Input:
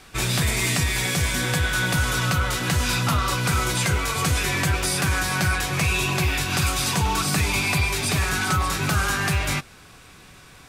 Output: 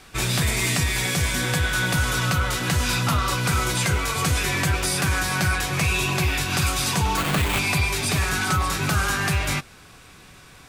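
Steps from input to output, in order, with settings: 7.17–7.59 sample-rate reducer 5600 Hz, jitter 20%

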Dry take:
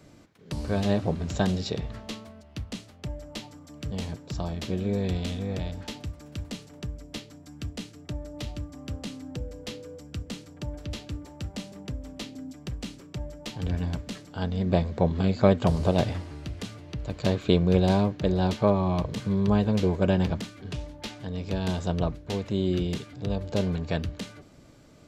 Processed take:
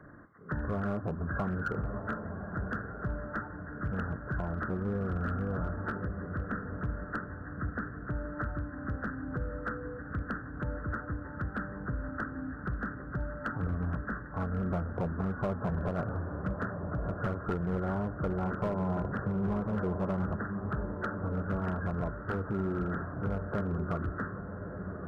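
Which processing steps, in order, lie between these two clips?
nonlinear frequency compression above 1000 Hz 4:1; compressor 3:1, threshold -30 dBFS, peak gain reduction 13 dB; on a send: diffused feedback echo 1.187 s, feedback 42%, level -7.5 dB; on the sum: hard clip -25 dBFS, distortion -16 dB

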